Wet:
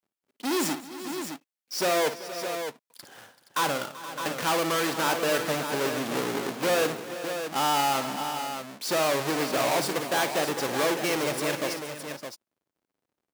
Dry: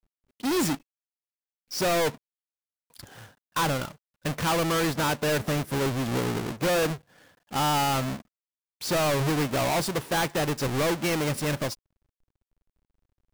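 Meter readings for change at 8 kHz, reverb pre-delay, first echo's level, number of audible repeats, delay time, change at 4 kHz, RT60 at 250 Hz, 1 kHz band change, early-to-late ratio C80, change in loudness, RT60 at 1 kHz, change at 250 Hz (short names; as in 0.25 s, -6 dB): +1.0 dB, none, -11.0 dB, 5, 56 ms, +1.0 dB, none, +1.0 dB, none, -1.0 dB, none, -2.5 dB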